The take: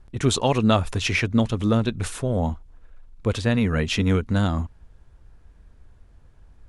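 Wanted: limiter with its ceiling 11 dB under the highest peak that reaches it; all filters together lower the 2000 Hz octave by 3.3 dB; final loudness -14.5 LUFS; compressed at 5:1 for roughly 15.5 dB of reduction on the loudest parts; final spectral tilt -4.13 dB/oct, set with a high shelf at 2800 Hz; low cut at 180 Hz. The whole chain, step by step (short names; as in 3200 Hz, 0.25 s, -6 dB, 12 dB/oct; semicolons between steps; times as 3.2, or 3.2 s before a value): HPF 180 Hz; bell 2000 Hz -6 dB; high shelf 2800 Hz +3.5 dB; compressor 5:1, threshold -34 dBFS; gain +27 dB; limiter -4 dBFS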